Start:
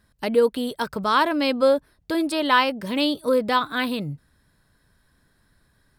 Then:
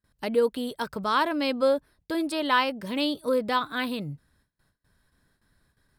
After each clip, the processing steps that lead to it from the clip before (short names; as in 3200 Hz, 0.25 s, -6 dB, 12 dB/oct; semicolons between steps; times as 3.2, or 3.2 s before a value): gate with hold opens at -53 dBFS; gain -4.5 dB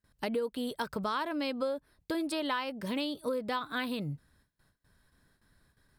compressor 6:1, threshold -30 dBFS, peak gain reduction 12.5 dB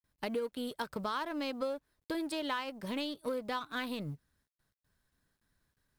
G.711 law mismatch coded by A; gain -1.5 dB